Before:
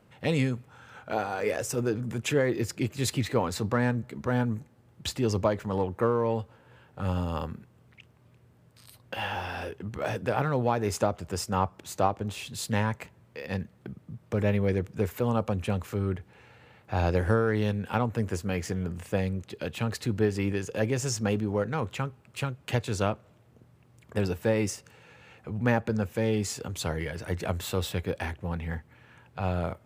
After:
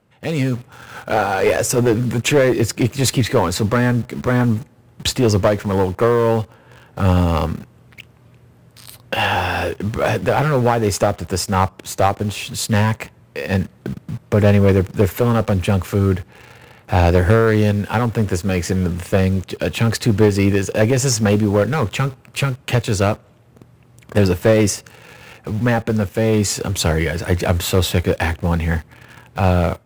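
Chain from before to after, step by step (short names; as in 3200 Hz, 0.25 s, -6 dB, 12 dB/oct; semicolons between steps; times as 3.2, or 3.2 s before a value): AGC gain up to 12 dB; in parallel at -5 dB: bit-crush 6-bit; on the sum: one-sided clip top -11.5 dBFS; gain -1 dB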